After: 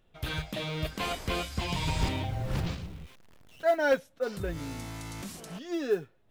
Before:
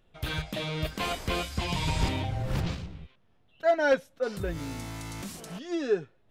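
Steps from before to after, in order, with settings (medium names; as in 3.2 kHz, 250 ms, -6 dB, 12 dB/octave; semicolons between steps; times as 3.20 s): 2.82–3.65 s: jump at every zero crossing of -49 dBFS; modulation noise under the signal 32 dB; trim -1.5 dB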